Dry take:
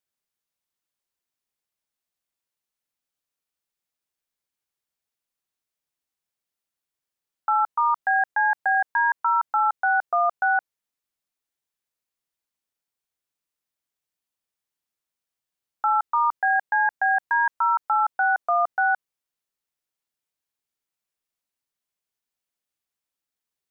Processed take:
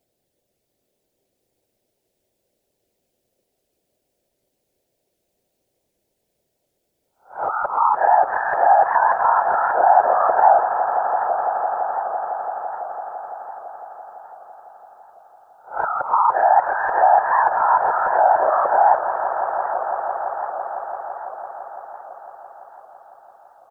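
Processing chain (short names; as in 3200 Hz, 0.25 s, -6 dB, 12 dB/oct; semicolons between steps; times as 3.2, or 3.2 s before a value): spectral swells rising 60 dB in 0.34 s; resonant low shelf 780 Hz +12 dB, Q 3; comb 6.5 ms, depth 82%; in parallel at -0.5 dB: compressor, threshold -22 dBFS, peak gain reduction 11 dB; on the sum: limiter -9.5 dBFS, peak gain reduction 6.5 dB; whisperiser; swelling echo 0.168 s, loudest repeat 5, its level -13.5 dB; on a send at -18.5 dB: reverb RT60 0.40 s, pre-delay 3 ms; on the sum: record warp 78 rpm, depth 100 cents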